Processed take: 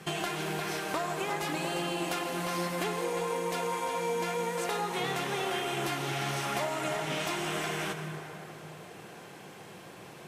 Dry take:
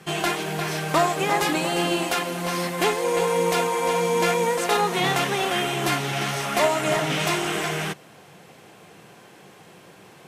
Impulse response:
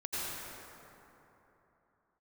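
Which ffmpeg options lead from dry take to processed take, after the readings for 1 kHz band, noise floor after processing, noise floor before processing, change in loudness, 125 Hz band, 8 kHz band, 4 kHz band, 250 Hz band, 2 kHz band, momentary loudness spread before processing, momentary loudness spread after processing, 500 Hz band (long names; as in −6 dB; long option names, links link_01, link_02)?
−9.0 dB, −48 dBFS, −49 dBFS, −9.5 dB, −8.0 dB, −9.0 dB, −9.0 dB, −8.5 dB, −9.0 dB, 5 LU, 15 LU, −9.5 dB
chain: -filter_complex "[0:a]acompressor=threshold=-30dB:ratio=6,asplit=2[link_01][link_02];[1:a]atrim=start_sample=2205[link_03];[link_02][link_03]afir=irnorm=-1:irlink=0,volume=-8.5dB[link_04];[link_01][link_04]amix=inputs=2:normalize=0,volume=-2.5dB"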